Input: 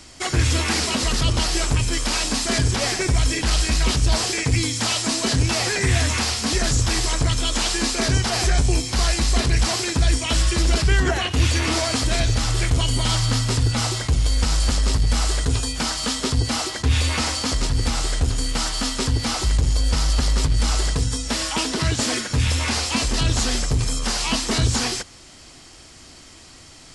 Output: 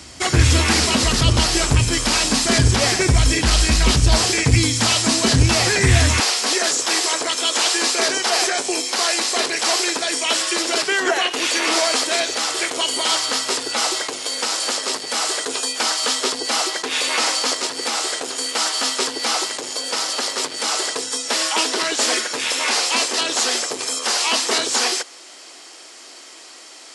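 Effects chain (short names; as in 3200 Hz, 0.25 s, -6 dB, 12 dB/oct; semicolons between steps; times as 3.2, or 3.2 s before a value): HPF 49 Hz 24 dB/oct, from 6.2 s 360 Hz; gain +5 dB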